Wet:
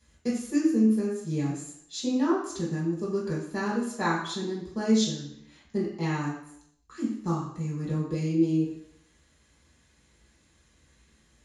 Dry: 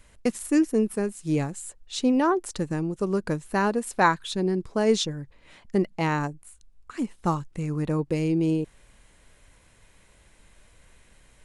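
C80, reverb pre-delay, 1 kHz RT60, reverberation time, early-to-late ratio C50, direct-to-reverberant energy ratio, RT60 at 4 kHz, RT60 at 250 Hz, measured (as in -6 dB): 6.0 dB, 3 ms, 0.70 s, 0.70 s, 3.0 dB, -7.5 dB, 0.70 s, 0.75 s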